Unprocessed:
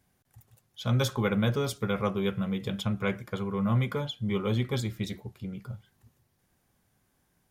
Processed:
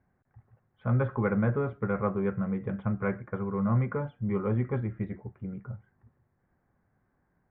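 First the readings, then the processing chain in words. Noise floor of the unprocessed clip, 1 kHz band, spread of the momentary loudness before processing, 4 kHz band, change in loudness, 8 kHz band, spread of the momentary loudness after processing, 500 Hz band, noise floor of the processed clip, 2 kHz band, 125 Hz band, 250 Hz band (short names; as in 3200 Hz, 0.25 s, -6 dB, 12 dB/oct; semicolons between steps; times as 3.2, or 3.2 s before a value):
-73 dBFS, 0.0 dB, 12 LU, under -25 dB, -0.5 dB, under -35 dB, 12 LU, 0.0 dB, -74 dBFS, -2.5 dB, 0.0 dB, 0.0 dB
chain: steep low-pass 1900 Hz 36 dB/oct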